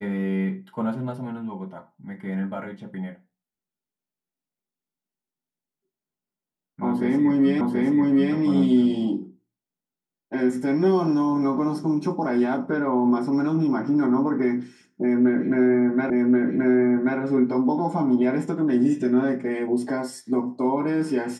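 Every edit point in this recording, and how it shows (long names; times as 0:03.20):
0:07.61: the same again, the last 0.73 s
0:16.10: the same again, the last 1.08 s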